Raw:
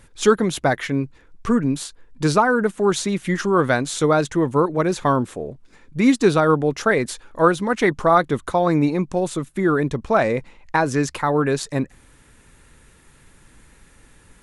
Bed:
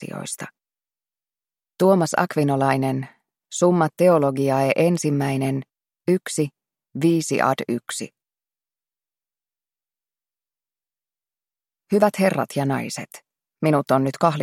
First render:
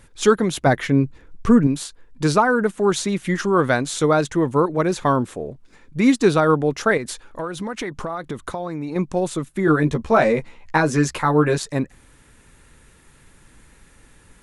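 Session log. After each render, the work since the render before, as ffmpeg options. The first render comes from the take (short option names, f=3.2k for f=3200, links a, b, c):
-filter_complex "[0:a]asettb=1/sr,asplit=3[a][b][c];[a]atrim=end=0.664[d];[b]atrim=start=0.66:end=1.67,asetpts=PTS-STARTPTS,afade=t=in:d=0.004:c=qsin,afade=t=out:st=1.006:d=0.004:c=qsin,lowshelf=f=490:g=6.5[e];[c]atrim=start=1.666[f];[d][e]acrossfade=d=0.004:c1=hsin:c2=qsin[g];[g][f]acrossfade=d=0.004:c1=qsin:c2=hsin,asettb=1/sr,asplit=3[h][i][j];[h]atrim=end=6.974[k];[i]atrim=start=6.97:end=8.96,asetpts=PTS-STARTPTS,afade=t=in:d=0.004:c=qsin,afade=t=out:st=1.986:d=0.004:c=qsin,acompressor=threshold=-23dB:ratio=16:attack=3.2:release=140:knee=1:detection=peak[l];[j]atrim=start=8.956[m];[k][l]acrossfade=d=0.004:c1=hsin:c2=qsin[n];[n][m]acrossfade=d=0.004:c1=qsin:c2=hsin,asettb=1/sr,asplit=3[o][p][q];[o]atrim=end=9.664[r];[p]atrim=start=9.66:end=11.58,asetpts=PTS-STARTPTS,afade=t=in:d=0.004:c=qsin,afade=t=out:st=1.916:d=0.004:c=qsin,asplit=2[s][t];[t]adelay=13,volume=-2.5dB[u];[s][u]amix=inputs=2:normalize=0,atrim=end_sample=84672[v];[q]atrim=start=11.576[w];[r][v]acrossfade=d=0.004:c1=hsin:c2=qsin[x];[x][w]acrossfade=d=0.004:c1=qsin:c2=hsin"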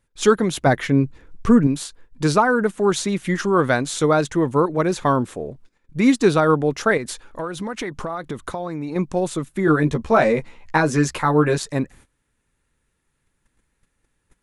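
-af "agate=range=-20dB:threshold=-44dB:ratio=16:detection=peak"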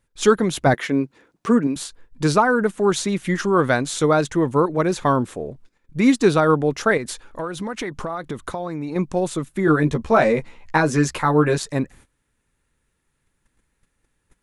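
-filter_complex "[0:a]asettb=1/sr,asplit=3[a][b][c];[a]atrim=end=0.744[d];[b]atrim=start=0.74:end=1.76,asetpts=PTS-STARTPTS,afade=t=in:d=0.004:c=qsin,afade=t=out:st=1.016:d=0.004:c=qsin,highpass=250[e];[c]atrim=start=1.756[f];[d][e]acrossfade=d=0.004:c1=hsin:c2=qsin[g];[g][f]acrossfade=d=0.004:c1=qsin:c2=hsin"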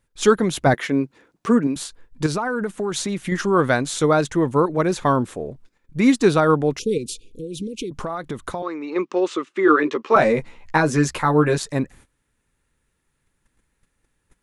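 -filter_complex "[0:a]asettb=1/sr,asplit=3[a][b][c];[a]atrim=end=2.264[d];[b]atrim=start=2.26:end=3.32,asetpts=PTS-STARTPTS,afade=t=in:d=0.004:c=qsin,afade=t=out:st=1.056:d=0.004:c=qsin,acompressor=threshold=-20dB:ratio=6:attack=3.2:release=140:knee=1:detection=peak[e];[c]atrim=start=3.316[f];[d][e]acrossfade=d=0.004:c1=hsin:c2=qsin[g];[g][f]acrossfade=d=0.004:c1=qsin:c2=hsin,asettb=1/sr,asplit=3[h][i][j];[h]atrim=end=6.794[k];[i]atrim=start=6.79:end=7.91,asetpts=PTS-STARTPTS,afade=t=in:d=0.004:c=qsin,afade=t=out:st=1.116:d=0.004:c=qsin,asuperstop=centerf=1100:order=20:qfactor=0.56[l];[j]atrim=start=7.906[m];[k][l]acrossfade=d=0.004:c1=hsin:c2=qsin[n];[n][m]acrossfade=d=0.004:c1=qsin:c2=hsin,asettb=1/sr,asplit=3[o][p][q];[o]atrim=end=8.624[r];[p]atrim=start=8.62:end=10.16,asetpts=PTS-STARTPTS,afade=t=in:d=0.004:c=qsin,afade=t=out:st=1.536:d=0.004:c=qsin,highpass=f=290:w=0.5412,highpass=f=290:w=1.3066,equalizer=f=380:t=q:w=4:g=6,equalizer=f=680:t=q:w=4:g=-7,equalizer=f=1.2k:t=q:w=4:g=9,equalizer=f=2k:t=q:w=4:g=4,equalizer=f=2.8k:t=q:w=4:g=7,lowpass=f=6.2k:w=0.5412,lowpass=f=6.2k:w=1.3066[s];[q]atrim=start=10.156[t];[r][s]acrossfade=d=0.004:c1=hsin:c2=qsin[u];[u][t]acrossfade=d=0.004:c1=qsin:c2=hsin"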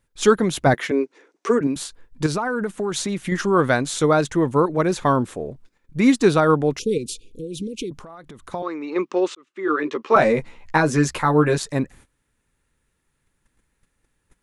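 -filter_complex "[0:a]asettb=1/sr,asplit=3[a][b][c];[a]atrim=end=0.914[d];[b]atrim=start=0.91:end=1.61,asetpts=PTS-STARTPTS,afade=t=in:d=0.004:c=qsin,afade=t=out:st=0.696:d=0.004:c=qsin,highpass=f=290:w=0.5412,highpass=f=290:w=1.3066,equalizer=f=410:t=q:w=4:g=7,equalizer=f=2.1k:t=q:w=4:g=4,equalizer=f=5.9k:t=q:w=4:g=6,lowpass=f=9.5k:w=0.5412,lowpass=f=9.5k:w=1.3066[e];[c]atrim=start=1.606[f];[d][e]acrossfade=d=0.004:c1=hsin:c2=qsin[g];[g][f]acrossfade=d=0.004:c1=qsin:c2=hsin,asplit=3[h][i][j];[h]afade=t=out:st=7.97:d=0.02[k];[i]acompressor=threshold=-39dB:ratio=4:attack=3.2:release=140:knee=1:detection=peak,afade=t=in:st=7.97:d=0.02,afade=t=out:st=8.51:d=0.02[l];[j]afade=t=in:st=8.51:d=0.02[m];[k][l][m]amix=inputs=3:normalize=0,asplit=2[n][o];[n]atrim=end=9.35,asetpts=PTS-STARTPTS,afade=t=out:st=9.346:d=0.004:c=hsin[p];[o]atrim=start=9.35,asetpts=PTS-STARTPTS,afade=t=in:d=0.78[q];[p][q]concat=n=2:v=0:a=1"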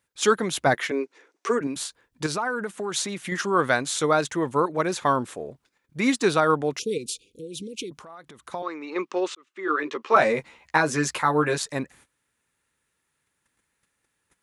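-af "highpass=74,lowshelf=f=460:g=-10"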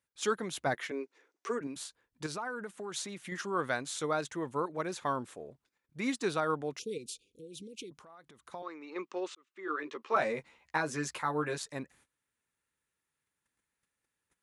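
-af "volume=-11dB"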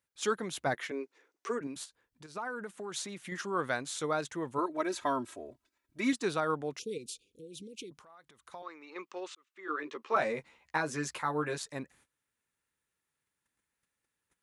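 -filter_complex "[0:a]asplit=3[a][b][c];[a]afade=t=out:st=1.84:d=0.02[d];[b]acompressor=threshold=-54dB:ratio=2.5:attack=3.2:release=140:knee=1:detection=peak,afade=t=in:st=1.84:d=0.02,afade=t=out:st=2.35:d=0.02[e];[c]afade=t=in:st=2.35:d=0.02[f];[d][e][f]amix=inputs=3:normalize=0,asettb=1/sr,asplit=3[g][h][i];[g]atrim=end=4.584[j];[h]atrim=start=4.58:end=6.13,asetpts=PTS-STARTPTS,afade=t=in:d=0.004:c=qsin,afade=t=out:st=1.546:d=0.004:c=qsin,aecho=1:1:3.1:0.87,atrim=end_sample=68355[k];[i]atrim=start=6.126[l];[j][k]acrossfade=d=0.004:c1=hsin:c2=qsin[m];[m][l]acrossfade=d=0.004:c1=qsin:c2=hsin,asettb=1/sr,asplit=3[n][o][p];[n]atrim=end=8.004[q];[o]atrim=start=8:end=9.69,asetpts=PTS-STARTPTS,afade=t=in:d=0.004:c=qsin,afade=t=out:st=1.686:d=0.004:c=qsin,equalizer=f=230:t=o:w=2.6:g=-7[r];[p]atrim=start=9.686[s];[q][r]acrossfade=d=0.004:c1=hsin:c2=qsin[t];[t][s]acrossfade=d=0.004:c1=qsin:c2=hsin"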